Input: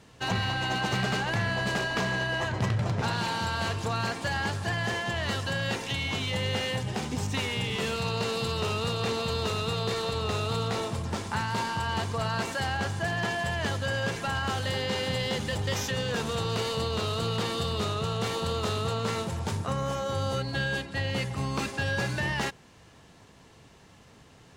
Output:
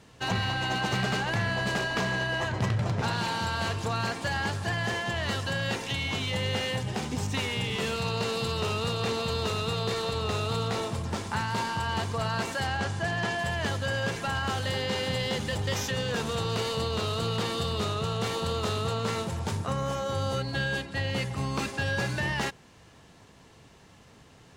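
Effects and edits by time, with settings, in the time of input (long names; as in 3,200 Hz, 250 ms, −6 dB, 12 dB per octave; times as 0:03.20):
0:12.67–0:13.39: low-pass filter 10,000 Hz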